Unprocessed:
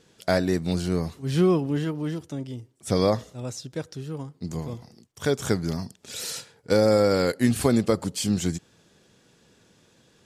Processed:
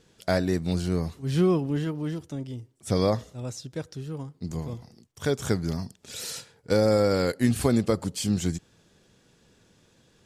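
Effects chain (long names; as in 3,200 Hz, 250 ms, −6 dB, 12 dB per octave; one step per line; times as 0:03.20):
low-shelf EQ 67 Hz +11 dB
level −2.5 dB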